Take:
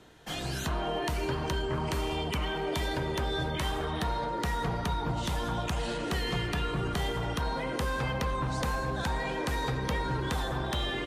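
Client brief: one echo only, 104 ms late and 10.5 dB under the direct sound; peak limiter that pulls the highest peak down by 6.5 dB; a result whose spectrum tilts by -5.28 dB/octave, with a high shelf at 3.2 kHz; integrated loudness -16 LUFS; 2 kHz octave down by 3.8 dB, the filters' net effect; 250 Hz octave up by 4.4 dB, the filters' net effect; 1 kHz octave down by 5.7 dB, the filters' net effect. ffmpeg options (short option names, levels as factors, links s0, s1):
-af "equalizer=f=250:t=o:g=6.5,equalizer=f=1000:t=o:g=-7,equalizer=f=2000:t=o:g=-3.5,highshelf=f=3200:g=3.5,alimiter=level_in=1.06:limit=0.0631:level=0:latency=1,volume=0.944,aecho=1:1:104:0.299,volume=7.08"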